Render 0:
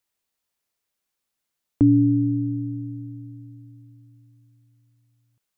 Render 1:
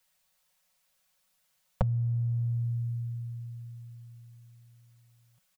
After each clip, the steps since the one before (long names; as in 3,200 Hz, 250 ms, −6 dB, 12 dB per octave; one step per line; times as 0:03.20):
downward compressor 3 to 1, threshold −25 dBFS, peak gain reduction 9.5 dB
elliptic band-stop filter 190–470 Hz
comb filter 5.4 ms, depth 82%
level +6 dB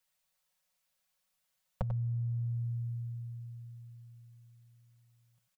slap from a distant wall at 16 metres, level −9 dB
level −7.5 dB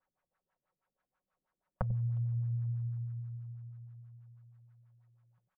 log-companded quantiser 8 bits
auto-filter low-pass sine 6.2 Hz 280–1,500 Hz
far-end echo of a speakerphone 360 ms, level −28 dB